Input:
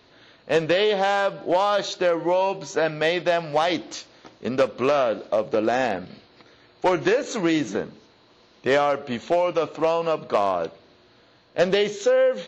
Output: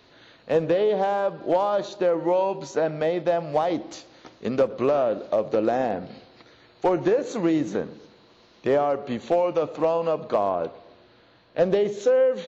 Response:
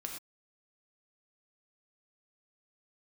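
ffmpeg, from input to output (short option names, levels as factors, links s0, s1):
-filter_complex "[0:a]asettb=1/sr,asplit=3[s0][s1][s2];[s0]atrim=end=10.494[s3];[s1]atrim=start=10.49:end=11.61,asetpts=PTS-STARTPTS,afade=t=in:d=0.004:c=qsin,afade=t=out:st=1.116:d=0.004:c=qsin,lowpass=4400[s4];[s2]atrim=start=11.606[s5];[s3][s4]acrossfade=d=0.004:c1=hsin:c2=qsin[s6];[s6][s5]acrossfade=d=0.004:c1=qsin:c2=hsin,acrossover=split=1000[s7][s8];[s8]acompressor=threshold=0.0112:ratio=6[s9];[s7][s9]amix=inputs=2:normalize=0,asplit=2[s10][s11];[s11]adelay=122,lowpass=f=1800:p=1,volume=0.106,asplit=2[s12][s13];[s13]adelay=122,lowpass=f=1800:p=1,volume=0.53,asplit=2[s14][s15];[s15]adelay=122,lowpass=f=1800:p=1,volume=0.53,asplit=2[s16][s17];[s17]adelay=122,lowpass=f=1800:p=1,volume=0.53[s18];[s10][s12][s14][s16][s18]amix=inputs=5:normalize=0"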